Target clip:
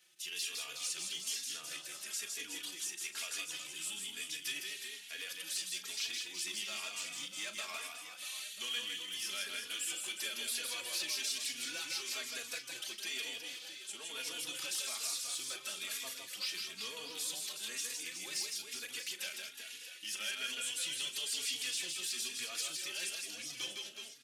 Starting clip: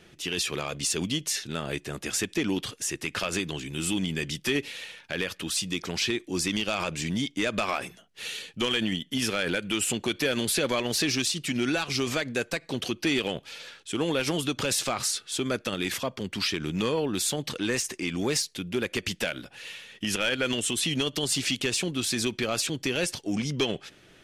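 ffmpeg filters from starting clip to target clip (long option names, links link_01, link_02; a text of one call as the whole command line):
ffmpeg -i in.wav -filter_complex "[0:a]acrossover=split=4600[link_01][link_02];[link_02]acompressor=threshold=-36dB:ratio=4:attack=1:release=60[link_03];[link_01][link_03]amix=inputs=2:normalize=0,aderivative,asplit=2[link_04][link_05];[link_05]adelay=38,volume=-11.5dB[link_06];[link_04][link_06]amix=inputs=2:normalize=0,asplit=2[link_07][link_08];[link_08]aecho=0:1:160|368|638.4|989.9|1447:0.631|0.398|0.251|0.158|0.1[link_09];[link_07][link_09]amix=inputs=2:normalize=0,asplit=2[link_10][link_11];[link_11]adelay=3.5,afreqshift=1.1[link_12];[link_10][link_12]amix=inputs=2:normalize=1" out.wav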